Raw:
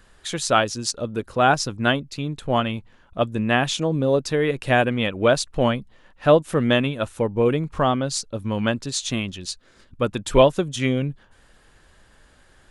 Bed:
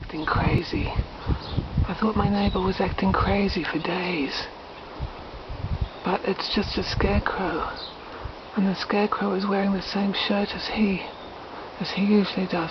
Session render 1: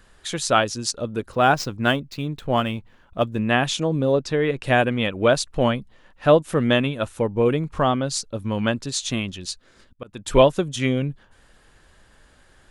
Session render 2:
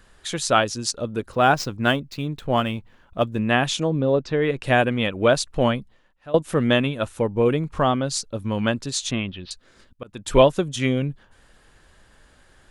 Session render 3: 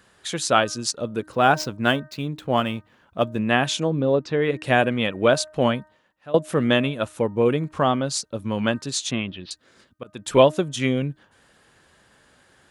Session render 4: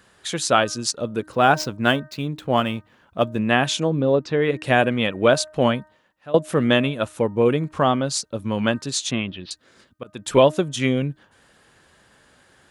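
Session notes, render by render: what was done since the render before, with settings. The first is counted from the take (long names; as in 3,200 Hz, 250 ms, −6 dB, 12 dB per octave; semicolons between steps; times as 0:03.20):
0:01.32–0:03.38: running median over 5 samples; 0:04.12–0:04.64: high-frequency loss of the air 60 metres; 0:09.13–0:10.28: volume swells 367 ms
0:03.90–0:04.42: high-frequency loss of the air 130 metres; 0:05.79–0:06.34: fade out quadratic, to −21.5 dB; 0:09.11–0:09.51: inverse Chebyshev low-pass filter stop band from 6,700 Hz
high-pass filter 110 Hz 12 dB per octave; hum removal 308.8 Hz, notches 6
level +1.5 dB; brickwall limiter −3 dBFS, peak gain reduction 3 dB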